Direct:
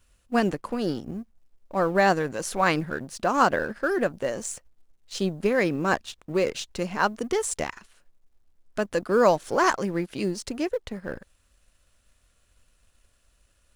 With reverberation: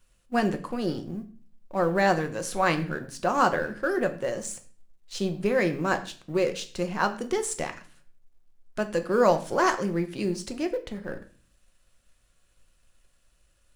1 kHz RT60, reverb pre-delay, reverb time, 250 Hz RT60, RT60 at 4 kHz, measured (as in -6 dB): 0.40 s, 5 ms, 0.40 s, 0.60 s, 0.40 s